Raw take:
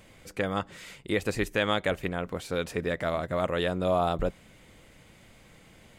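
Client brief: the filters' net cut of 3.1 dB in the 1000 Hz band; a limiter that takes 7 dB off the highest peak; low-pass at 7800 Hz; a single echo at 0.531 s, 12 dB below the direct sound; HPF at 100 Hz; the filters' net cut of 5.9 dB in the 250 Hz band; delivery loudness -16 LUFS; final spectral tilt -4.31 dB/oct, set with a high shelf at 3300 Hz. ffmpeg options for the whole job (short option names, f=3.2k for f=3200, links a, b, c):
-af "highpass=100,lowpass=7.8k,equalizer=f=250:t=o:g=-8.5,equalizer=f=1k:t=o:g=-4.5,highshelf=f=3.3k:g=4,alimiter=limit=-19.5dB:level=0:latency=1,aecho=1:1:531:0.251,volume=18dB"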